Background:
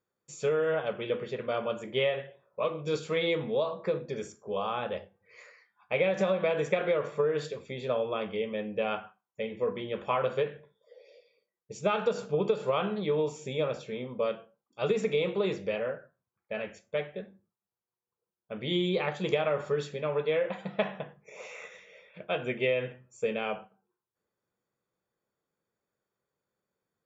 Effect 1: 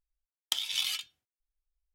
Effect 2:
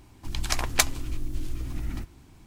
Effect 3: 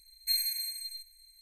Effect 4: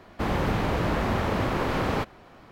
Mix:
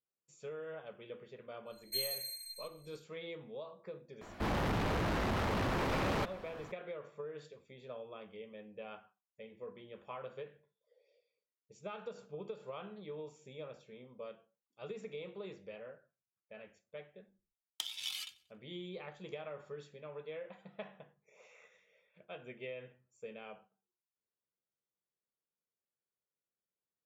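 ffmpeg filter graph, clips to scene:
-filter_complex "[0:a]volume=-17dB[a];[4:a]asoftclip=type=tanh:threshold=-30dB[b];[1:a]aecho=1:1:92|184|276:0.0794|0.0302|0.0115[c];[3:a]atrim=end=1.41,asetpts=PTS-STARTPTS,volume=-7.5dB,afade=t=in:d=0.1,afade=t=out:st=1.31:d=0.1,adelay=1650[d];[b]atrim=end=2.51,asetpts=PTS-STARTPTS,volume=-1dB,afade=t=in:d=0.004:c=hsin,afade=t=out:st=2.506:d=0.004:c=hsin,adelay=185661S[e];[c]atrim=end=1.94,asetpts=PTS-STARTPTS,volume=-9.5dB,afade=t=in:d=0.004:c=hsin,afade=t=out:st=1.936:d=0.004:c=hsin,adelay=17280[f];[a][d][e][f]amix=inputs=4:normalize=0"

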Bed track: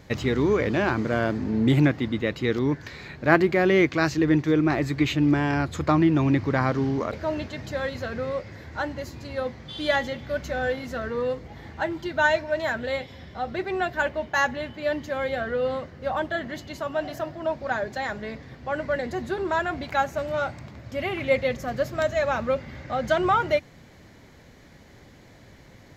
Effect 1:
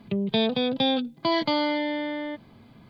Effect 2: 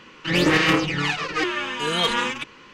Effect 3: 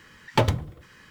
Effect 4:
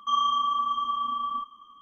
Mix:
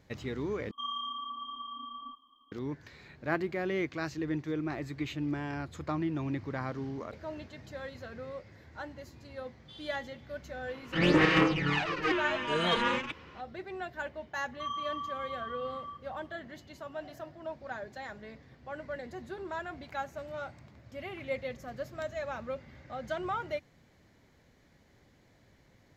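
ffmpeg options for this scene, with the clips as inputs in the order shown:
-filter_complex "[4:a]asplit=2[a][b];[0:a]volume=-13dB[c];[a]firequalizer=gain_entry='entry(100,0);entry(160,-15);entry(260,12);entry(390,0);entry(780,13);entry(1400,-11);entry(3400,9);entry(5000,-12)':delay=0.05:min_phase=1[d];[2:a]aemphasis=mode=reproduction:type=75fm[e];[c]asplit=2[f][g];[f]atrim=end=0.714[h];[d]atrim=end=1.81,asetpts=PTS-STARTPTS,volume=-13dB[i];[g]atrim=start=2.516[j];[e]atrim=end=2.73,asetpts=PTS-STARTPTS,volume=-5dB,afade=t=in:d=0.004:c=hsin,afade=t=out:st=2.726:d=0.004:c=hsin,adelay=10680[k];[b]atrim=end=1.81,asetpts=PTS-STARTPTS,volume=-12.5dB,afade=t=in:d=0.004:c=hsin,afade=t=out:st=1.806:d=0.004:c=hsin,adelay=14530[l];[h][i]acrossfade=d=0.004:c1=hsin:c2=hsin[m];[m][j]acrossfade=d=0.004:c1=hsin:c2=hsin[n];[n][k][l]amix=inputs=3:normalize=0"

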